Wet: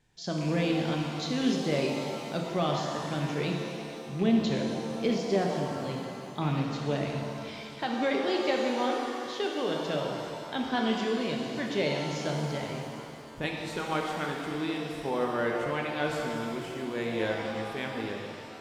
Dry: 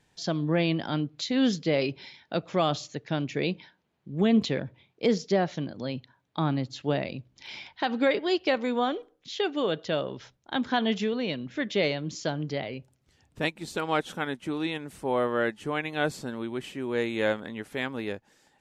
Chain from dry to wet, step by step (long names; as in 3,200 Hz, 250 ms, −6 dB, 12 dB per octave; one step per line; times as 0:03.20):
loose part that buzzes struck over −28 dBFS, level −30 dBFS
low-shelf EQ 72 Hz +9.5 dB
reverb with rising layers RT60 2.6 s, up +7 semitones, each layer −8 dB, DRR 0 dB
level −5.5 dB